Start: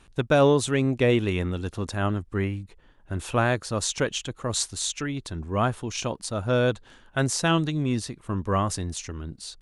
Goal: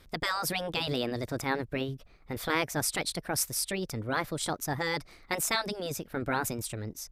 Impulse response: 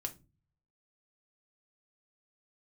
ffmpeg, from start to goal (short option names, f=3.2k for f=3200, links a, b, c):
-af "afftfilt=real='re*lt(hypot(re,im),0.355)':imag='im*lt(hypot(re,im),0.355)':win_size=1024:overlap=0.75,asetrate=59535,aresample=44100,volume=-2dB"